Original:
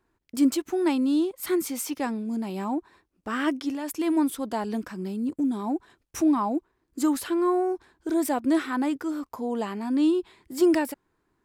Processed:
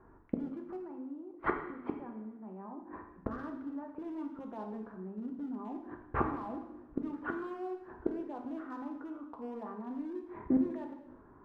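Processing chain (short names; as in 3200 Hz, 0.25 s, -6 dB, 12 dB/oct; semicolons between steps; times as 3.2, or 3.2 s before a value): inverse Chebyshev low-pass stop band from 5900 Hz, stop band 70 dB; notches 50/100/150/200/250/300/350 Hz; limiter -24 dBFS, peak gain reduction 12 dB; 0.76–3.31 compressor 4:1, threshold -33 dBFS, peak gain reduction 6 dB; hard clip -25.5 dBFS, distortion -26 dB; flipped gate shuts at -32 dBFS, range -25 dB; two-slope reverb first 0.83 s, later 2.1 s, DRR 2.5 dB; gain +13.5 dB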